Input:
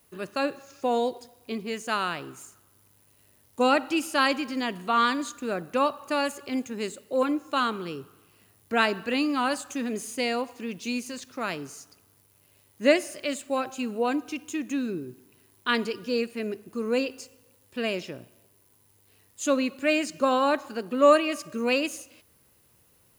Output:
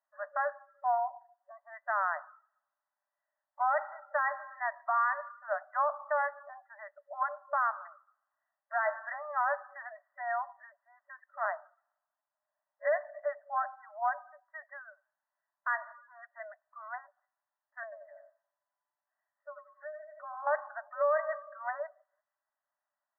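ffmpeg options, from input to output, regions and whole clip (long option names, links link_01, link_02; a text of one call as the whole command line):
ffmpeg -i in.wav -filter_complex "[0:a]asettb=1/sr,asplit=3[link_01][link_02][link_03];[link_01]atrim=end=11.454[link_04];[link_02]atrim=start=11.45:end=12.85,asetpts=PTS-STARTPTS,afade=type=in:duration=0.004:curve=qsin,afade=type=out:start_time=1.396:duration=0.004:curve=qsin,afreqshift=30,tiltshelf=frequency=1200:gain=3.5[link_05];[link_03]atrim=start=12.846[link_06];[link_04][link_05]acrossfade=duration=0.004:curve1=hsin:curve2=qsin[link_07];[link_07][link_06]acrossfade=duration=0.004:curve1=qsin:curve2=hsin,asettb=1/sr,asplit=3[link_08][link_09][link_10];[link_08]atrim=end=17.834[link_11];[link_09]atrim=start=17.83:end=20.47,asetpts=PTS-STARTPTS,afade=type=in:duration=0.004:curve=qsin,afade=type=out:start_time=2.636:duration=0.004:curve=qsin,aecho=1:1:87|174|261:0.447|0.121|0.0326,atrim=end_sample=116424,acompressor=threshold=-37dB:ratio=6:attack=3.2:release=140:knee=1:detection=peak[link_12];[link_10]atrim=start=20.466[link_13];[link_11][link_12]acrossfade=duration=0.004:curve1=hsin:curve2=qsin[link_14];[link_14][link_13]acrossfade=duration=0.004:curve1=qsin:curve2=hsin,afftfilt=real='re*between(b*sr/4096,570,2000)':imag='im*between(b*sr/4096,570,2000)':win_size=4096:overlap=0.75,afftdn=noise_reduction=17:noise_floor=-46,alimiter=limit=-20.5dB:level=0:latency=1:release=12" out.wav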